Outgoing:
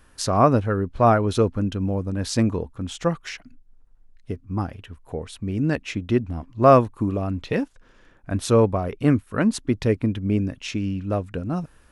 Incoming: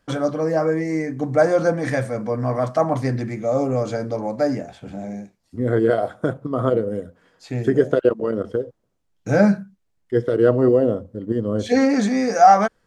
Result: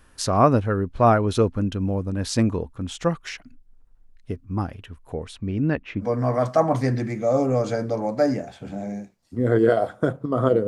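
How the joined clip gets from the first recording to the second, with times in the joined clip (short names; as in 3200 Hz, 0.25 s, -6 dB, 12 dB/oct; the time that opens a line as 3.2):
outgoing
5.32–6.07 LPF 6900 Hz -> 1400 Hz
6.03 switch to incoming from 2.24 s, crossfade 0.08 s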